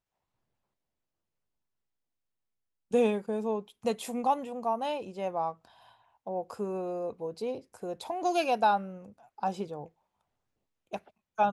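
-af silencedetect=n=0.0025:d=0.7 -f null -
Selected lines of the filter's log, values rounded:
silence_start: 0.00
silence_end: 2.91 | silence_duration: 2.91
silence_start: 9.88
silence_end: 10.92 | silence_duration: 1.03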